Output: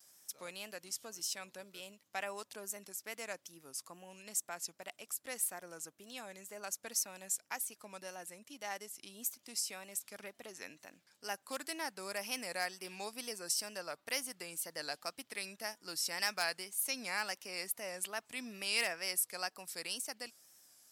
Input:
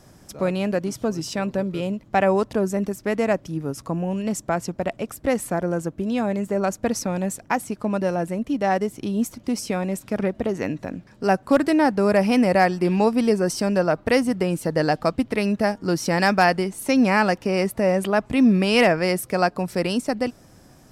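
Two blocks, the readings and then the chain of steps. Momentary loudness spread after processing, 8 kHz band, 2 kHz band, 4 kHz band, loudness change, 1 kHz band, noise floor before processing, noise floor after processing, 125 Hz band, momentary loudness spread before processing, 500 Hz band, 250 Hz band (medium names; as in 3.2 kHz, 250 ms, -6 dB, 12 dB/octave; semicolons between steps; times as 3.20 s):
14 LU, -2.5 dB, -14.5 dB, -7.5 dB, -17.0 dB, -21.5 dB, -51 dBFS, -75 dBFS, -34.5 dB, 9 LU, -25.5 dB, -32.0 dB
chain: wow and flutter 85 cents; differentiator; trim -3 dB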